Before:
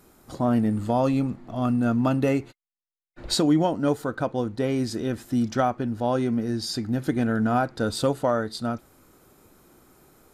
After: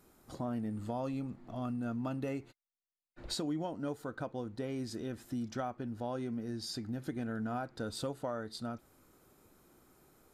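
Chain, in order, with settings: compressor 2:1, threshold -30 dBFS, peak gain reduction 8 dB; gain -8.5 dB

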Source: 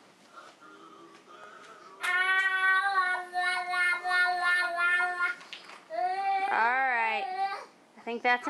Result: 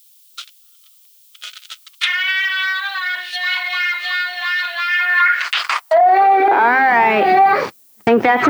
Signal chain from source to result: gate -47 dBFS, range -25 dB; rotary speaker horn 1 Hz, later 6.3 Hz, at 7.1; compressor, threshold -32 dBFS, peak gain reduction 10.5 dB; sample leveller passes 3; treble ducked by the level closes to 1600 Hz, closed at -25.5 dBFS; added noise violet -70 dBFS; high-pass sweep 3200 Hz -> 110 Hz, 4.88–7.42; maximiser +25 dB; gain -5 dB

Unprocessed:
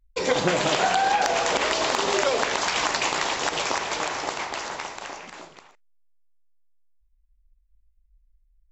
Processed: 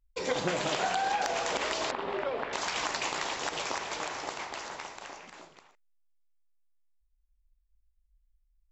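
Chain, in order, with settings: 1.91–2.53 air absorption 450 m; gain -8 dB

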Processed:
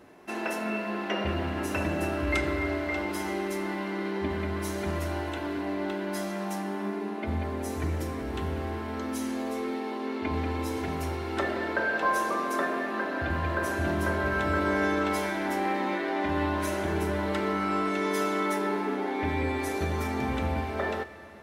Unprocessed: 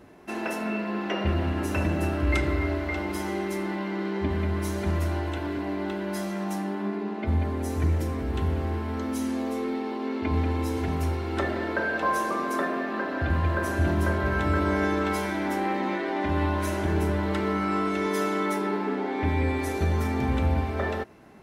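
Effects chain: low shelf 190 Hz -9 dB; Schroeder reverb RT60 3.7 s, combs from 29 ms, DRR 13 dB

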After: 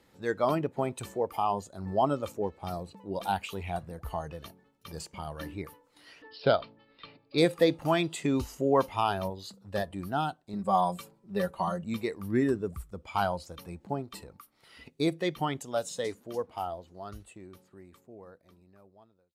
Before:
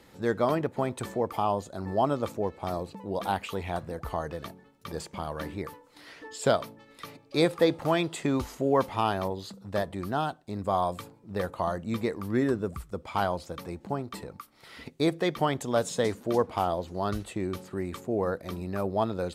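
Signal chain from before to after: ending faded out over 5.17 s; 6.22–7.38 steep low-pass 5000 Hz 72 dB/oct; spectral noise reduction 8 dB; 10.53–11.84 comb 5.2 ms, depth 79%

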